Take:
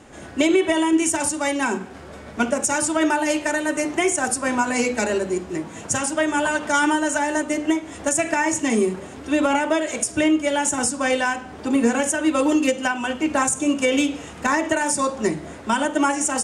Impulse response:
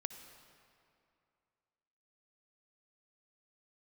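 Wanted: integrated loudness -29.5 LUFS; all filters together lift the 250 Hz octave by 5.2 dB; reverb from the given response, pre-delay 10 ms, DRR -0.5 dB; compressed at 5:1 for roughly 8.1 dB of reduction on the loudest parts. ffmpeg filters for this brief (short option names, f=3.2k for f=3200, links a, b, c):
-filter_complex "[0:a]equalizer=f=250:t=o:g=6.5,acompressor=threshold=-19dB:ratio=5,asplit=2[a][b];[1:a]atrim=start_sample=2205,adelay=10[c];[b][c]afir=irnorm=-1:irlink=0,volume=2.5dB[d];[a][d]amix=inputs=2:normalize=0,volume=-10dB"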